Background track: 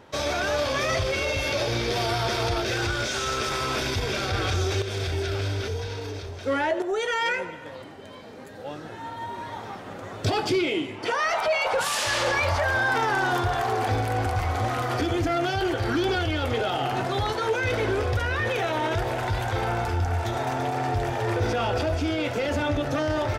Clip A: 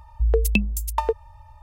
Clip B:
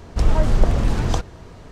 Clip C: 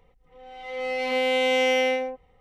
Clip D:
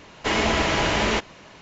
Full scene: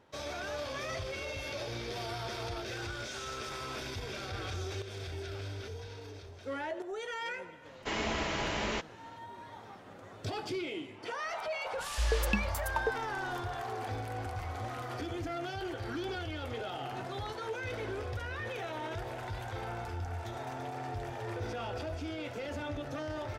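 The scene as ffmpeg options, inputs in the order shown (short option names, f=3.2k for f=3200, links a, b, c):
-filter_complex "[0:a]volume=-13dB[a];[4:a]atrim=end=1.61,asetpts=PTS-STARTPTS,volume=-12dB,afade=t=in:d=0.05,afade=t=out:st=1.56:d=0.05,adelay=7610[b];[1:a]atrim=end=1.62,asetpts=PTS-STARTPTS,volume=-10.5dB,afade=t=in:d=0.004:c=hsin,afade=t=out:st=1.616:d=0.004:c=hsin,adelay=519498S[c];[a][b][c]amix=inputs=3:normalize=0"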